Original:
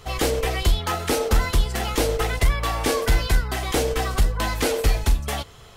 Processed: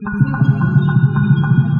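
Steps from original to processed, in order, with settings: wide varispeed 3.22×; spectral gate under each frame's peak -10 dB strong; boxcar filter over 21 samples; gated-style reverb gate 480 ms flat, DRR 0.5 dB; trim +6.5 dB

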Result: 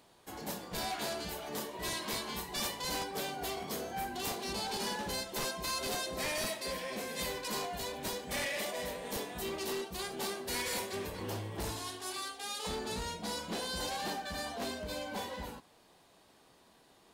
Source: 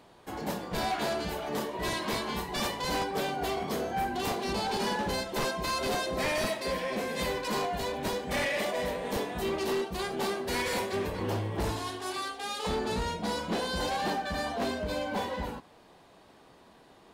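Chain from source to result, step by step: treble shelf 3.9 kHz +11.5 dB; 4.89–7.19 s: word length cut 12-bit, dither none; trim -8 dB

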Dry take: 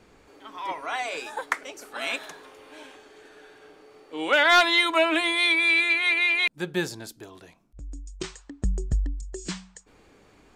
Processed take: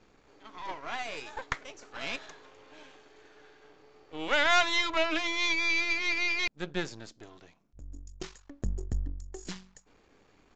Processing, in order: partial rectifier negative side -12 dB; resampled via 16 kHz; trim -3.5 dB

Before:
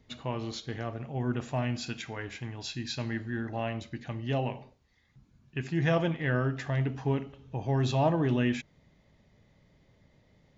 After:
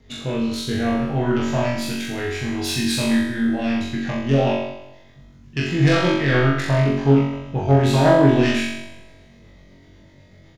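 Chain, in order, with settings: self-modulated delay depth 0.17 ms; rotary cabinet horn 0.65 Hz, later 8 Hz, at 3.98 s; in parallel at -11.5 dB: saturation -33.5 dBFS, distortion -7 dB; on the sum: doubling 40 ms -5 dB; on a send: flutter echo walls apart 3.7 m, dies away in 0.84 s; on the sum: Schroeder reverb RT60 1.9 s, combs from 30 ms, DRR 19 dB; trim +8.5 dB

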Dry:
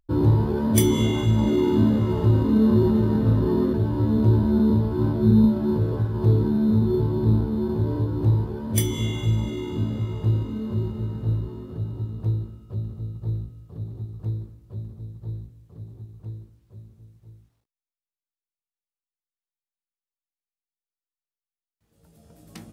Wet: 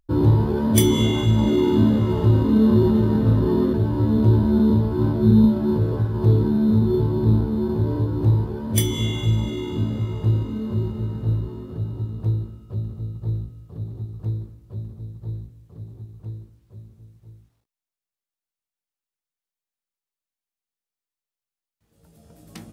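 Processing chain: dynamic bell 3.3 kHz, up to +4 dB, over -53 dBFS, Q 4.7; trim +2 dB

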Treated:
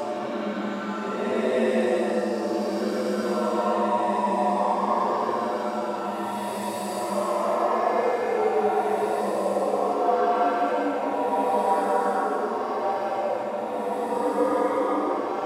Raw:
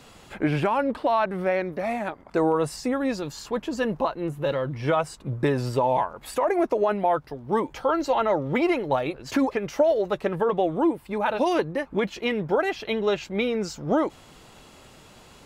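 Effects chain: frequency shift +82 Hz; echo whose repeats swap between lows and highs 200 ms, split 910 Hz, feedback 90%, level -6 dB; Paulstretch 6.2×, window 0.25 s, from 5.20 s; trim -2.5 dB

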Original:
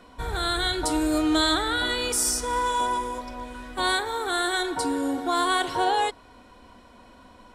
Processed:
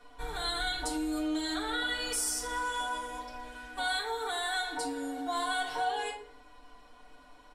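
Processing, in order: comb 6.8 ms, depth 95%; simulated room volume 550 m³, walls furnished, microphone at 1.8 m; compression 2:1, threshold -21 dBFS, peak gain reduction 8 dB; peaking EQ 160 Hz -12 dB 1.9 oct; trim -9 dB

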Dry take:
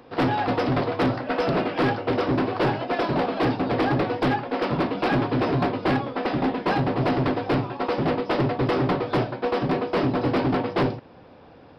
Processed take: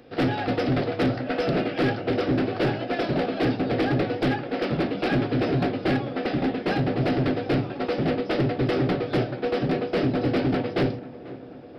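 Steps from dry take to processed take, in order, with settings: peaking EQ 1 kHz -14.5 dB 0.46 oct; tape echo 491 ms, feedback 77%, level -15 dB, low-pass 1.5 kHz

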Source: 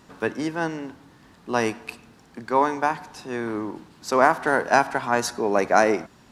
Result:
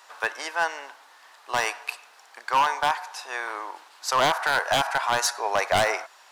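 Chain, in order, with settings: high-pass 690 Hz 24 dB/octave; in parallel at +2 dB: peak limiter -17 dBFS, peak gain reduction 11.5 dB; on the sum: wavefolder -11.5 dBFS; trim -2 dB

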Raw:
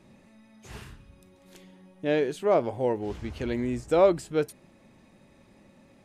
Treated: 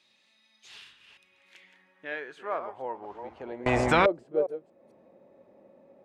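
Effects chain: chunks repeated in reverse 235 ms, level -10 dB; band-pass sweep 3.8 kHz -> 530 Hz, 0.63–4.14 s; in parallel at +2 dB: compression, threshold -51 dBFS, peak gain reduction 31.5 dB; 3.66–4.06 s: on the sum: spectrum-flattening compressor 10:1

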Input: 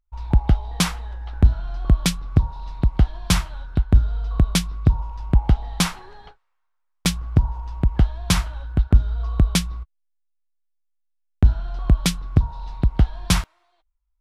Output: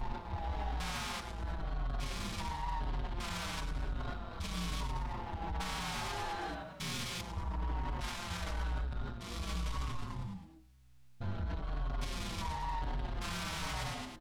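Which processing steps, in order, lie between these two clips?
spectrogram pixelated in time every 400 ms; low-pass 3.8 kHz 6 dB/octave; bass shelf 220 Hz -12 dB; de-hum 53.75 Hz, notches 39; on a send: frequency-shifting echo 108 ms, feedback 45%, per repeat -64 Hz, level -9 dB; on the sum: compressor with a negative ratio -39 dBFS, ratio -1; peak limiter -46.5 dBFS, peak gain reduction 21.5 dB; waveshaping leveller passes 2; vibrato 4.2 Hz 38 cents; endless flanger 5.1 ms -1 Hz; trim +16 dB

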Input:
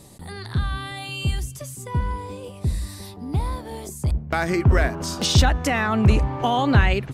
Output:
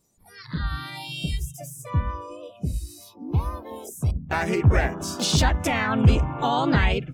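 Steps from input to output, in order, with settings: spectral noise reduction 22 dB; harmony voices +3 st -2 dB; trim -4 dB

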